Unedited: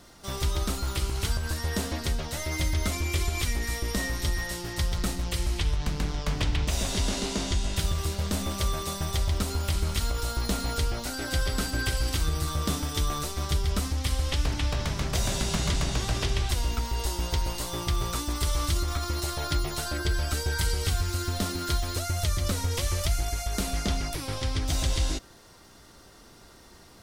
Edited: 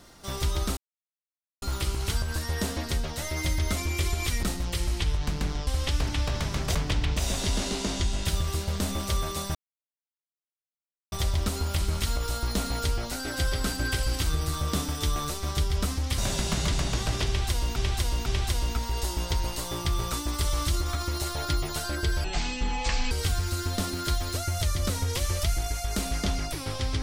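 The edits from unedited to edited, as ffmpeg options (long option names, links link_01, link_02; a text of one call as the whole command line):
ffmpeg -i in.wav -filter_complex "[0:a]asplit=11[link_01][link_02][link_03][link_04][link_05][link_06][link_07][link_08][link_09][link_10][link_11];[link_01]atrim=end=0.77,asetpts=PTS-STARTPTS,afade=type=out:start_time=0.766:duration=0.004:curve=hsin,apad=pad_dur=0.85[link_12];[link_02]atrim=start=0.77:end=3.582,asetpts=PTS-STARTPTS,afade=type=in:duration=0.004:curve=hsin[link_13];[link_03]atrim=start=5.018:end=6.262[link_14];[link_04]atrim=start=14.118:end=15.202[link_15];[link_05]atrim=start=6.258:end=9.06,asetpts=PTS-STARTPTS,afade=type=out:start_time=2.798:duration=0.004:curve=hsin,apad=pad_dur=1.57[link_16];[link_06]atrim=start=9.06:end=14.122,asetpts=PTS-STARTPTS,afade=type=in:duration=0.004:curve=hsin[link_17];[link_07]atrim=start=15.198:end=16.782[link_18];[link_08]atrim=start=16.278:end=16.782[link_19];[link_09]atrim=start=16.278:end=20.264[link_20];[link_10]atrim=start=20.26:end=20.73,asetpts=PTS-STARTPTS,asetrate=23814,aresample=44100,atrim=end_sample=38383,asetpts=PTS-STARTPTS[link_21];[link_11]atrim=start=20.726[link_22];[link_12][link_13]concat=n=2:v=0:a=1[link_23];[link_23][link_14]acrossfade=duration=0.004:curve1=hsin:curve2=hsin[link_24];[link_24][link_15]acrossfade=duration=0.004:curve1=hsin:curve2=hsin[link_25];[link_16][link_17]concat=n=2:v=0:a=1[link_26];[link_25][link_26]acrossfade=duration=0.004:curve1=hsin:curve2=hsin[link_27];[link_27][link_18]acrossfade=duration=0.004:curve1=hsin:curve2=hsin[link_28];[link_28][link_19]acrossfade=duration=0.004:curve1=hsin:curve2=hsin[link_29];[link_29][link_20]acrossfade=duration=0.004:curve1=hsin:curve2=hsin[link_30];[link_30][link_21]acrossfade=duration=0.004:curve1=hsin:curve2=hsin[link_31];[link_31][link_22]acrossfade=duration=0.004:curve1=hsin:curve2=hsin" out.wav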